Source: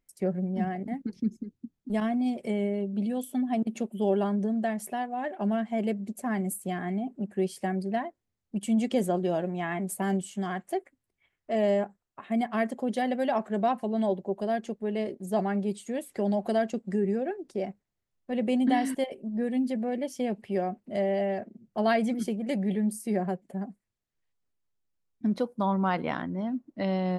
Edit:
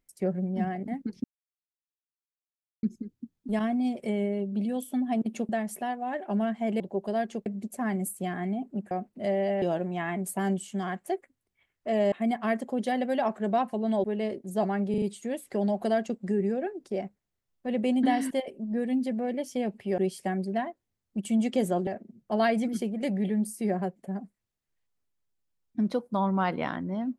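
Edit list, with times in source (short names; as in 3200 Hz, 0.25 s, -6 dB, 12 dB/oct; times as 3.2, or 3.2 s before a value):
1.24 insert silence 1.59 s
3.9–4.6 cut
7.36–9.25 swap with 20.62–21.33
11.75–12.22 cut
14.14–14.8 move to 5.91
15.66 stutter 0.04 s, 4 plays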